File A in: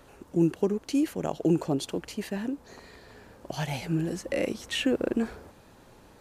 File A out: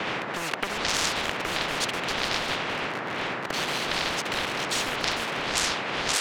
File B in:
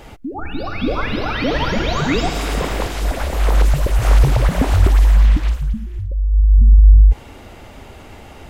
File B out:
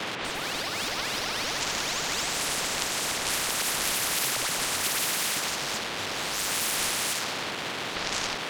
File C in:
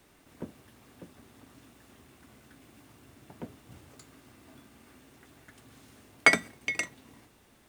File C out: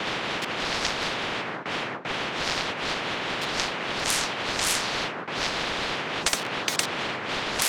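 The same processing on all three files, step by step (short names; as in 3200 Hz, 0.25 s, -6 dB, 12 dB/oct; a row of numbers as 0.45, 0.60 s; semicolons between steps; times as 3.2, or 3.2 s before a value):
level-crossing sampler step -36 dBFS; wind noise 630 Hz -21 dBFS; gate with hold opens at -34 dBFS; auto-wah 330–2600 Hz, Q 2, up, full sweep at -6 dBFS; HPF 140 Hz 24 dB/oct; soft clip -21.5 dBFS; tilt shelf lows -8.5 dB, about 660 Hz; compressor 2:1, threshold -38 dBFS; spectral compressor 10:1; match loudness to -27 LUFS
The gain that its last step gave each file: +17.5, +14.0, +18.0 dB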